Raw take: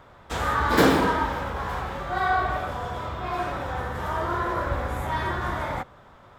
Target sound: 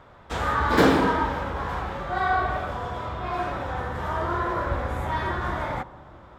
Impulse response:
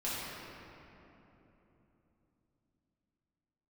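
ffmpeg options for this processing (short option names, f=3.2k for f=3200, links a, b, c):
-filter_complex "[0:a]highshelf=f=8.3k:g=-10,asplit=2[a][b];[1:a]atrim=start_sample=2205,lowpass=1.4k[c];[b][c]afir=irnorm=-1:irlink=0,volume=-21.5dB[d];[a][d]amix=inputs=2:normalize=0"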